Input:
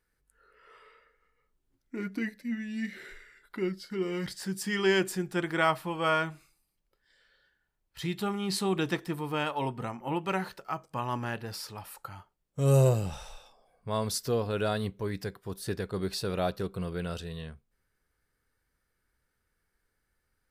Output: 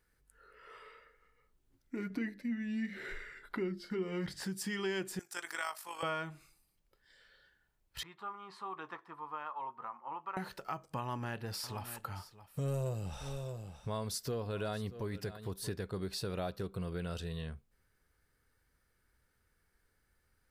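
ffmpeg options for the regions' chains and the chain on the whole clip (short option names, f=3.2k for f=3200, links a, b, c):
-filter_complex "[0:a]asettb=1/sr,asplit=3[a][b][c];[a]atrim=end=2.104[d];[b]atrim=start=2.1:end=4.44,asetpts=PTS-STARTPTS,afade=t=in:d=0.004:c=qsin,afade=t=out:st=2.336:d=0.004:c=qsin,highshelf=f=3.7k:g=-10,bandreject=f=50:t=h:w=6,bandreject=f=100:t=h:w=6,bandreject=f=150:t=h:w=6,bandreject=f=200:t=h:w=6,bandreject=f=250:t=h:w=6,bandreject=f=300:t=h:w=6,bandreject=f=350:t=h:w=6,acontrast=54[e];[c]atrim=start=4.436[f];[d][e]acrossfade=d=0.004:c1=hsin:c2=qsin[g];[g][f]acrossfade=d=0.004:c1=qsin:c2=hsin,asettb=1/sr,asplit=3[h][i][j];[h]atrim=end=5.194[k];[i]atrim=start=5.19:end=6.03,asetpts=PTS-STARTPTS,afade=t=in:d=0.004:c=qsin,afade=t=out:st=0.836:d=0.004:c=qsin,highpass=1k,highshelf=f=4.5k:t=q:w=1.5:g=8.5,tremolo=f=50:d=0.571[l];[j]atrim=start=6.026[m];[k][l]acrossfade=d=0.004:c1=hsin:c2=qsin[n];[n][m]acrossfade=d=0.004:c1=qsin:c2=hsin,asettb=1/sr,asplit=3[o][p][q];[o]atrim=end=8.034[r];[p]atrim=start=8.03:end=10.37,asetpts=PTS-STARTPTS,afade=t=in:d=0.004:c=qsin,afade=t=out:st=2.336:d=0.004:c=qsin,bandpass=f=1.1k:t=q:w=4.9,asplit=2[s][t];[t]adelay=13,volume=-12dB[u];[s][u]amix=inputs=2:normalize=0,atrim=end_sample=103194[v];[q]atrim=start=10.366[w];[r][v]acrossfade=d=0.004:c1=hsin:c2=qsin[x];[x][w]acrossfade=d=0.004:c1=qsin:c2=hsin,asettb=1/sr,asplit=3[y][z][aa];[y]atrim=end=11.014[ab];[z]atrim=start=11.01:end=15.69,asetpts=PTS-STARTPTS,afade=t=in:d=0.004:c=qsin,afade=t=out:st=4.676:d=0.004:c=qsin,aeval=exprs='clip(val(0),-1,0.0841)':c=same,aecho=1:1:626:0.126,atrim=end_sample=206388[ac];[aa]atrim=start=15.686[ad];[ab][ac]acrossfade=d=0.004:c1=hsin:c2=qsin[ae];[ae][ad]acrossfade=d=0.004:c1=qsin:c2=hsin,equalizer=f=78:t=o:w=1.4:g=3,acompressor=threshold=-40dB:ratio=3,volume=2dB"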